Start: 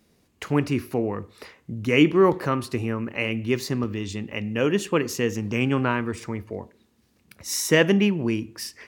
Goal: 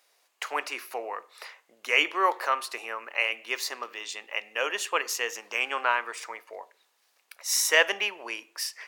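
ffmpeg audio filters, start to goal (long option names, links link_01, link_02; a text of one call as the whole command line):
ffmpeg -i in.wav -af "highpass=frequency=650:width=0.5412,highpass=frequency=650:width=1.3066,volume=2dB" out.wav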